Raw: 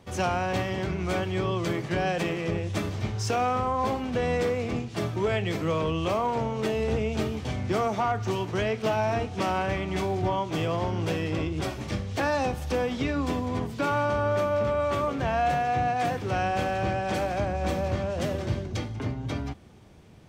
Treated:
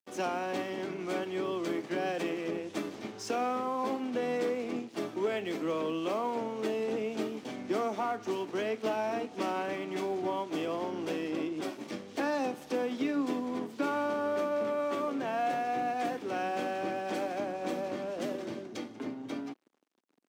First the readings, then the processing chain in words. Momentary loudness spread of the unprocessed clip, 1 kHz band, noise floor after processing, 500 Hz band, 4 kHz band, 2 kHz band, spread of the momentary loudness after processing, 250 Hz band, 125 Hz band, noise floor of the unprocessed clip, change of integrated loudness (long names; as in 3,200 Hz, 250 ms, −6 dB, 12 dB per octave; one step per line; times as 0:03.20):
5 LU, −6.5 dB, −49 dBFS, −4.5 dB, −7.0 dB, −7.0 dB, 7 LU, −3.5 dB, −20.0 dB, −38 dBFS, −6.0 dB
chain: dead-zone distortion −46.5 dBFS
four-pole ladder high-pass 230 Hz, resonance 45%
level +2.5 dB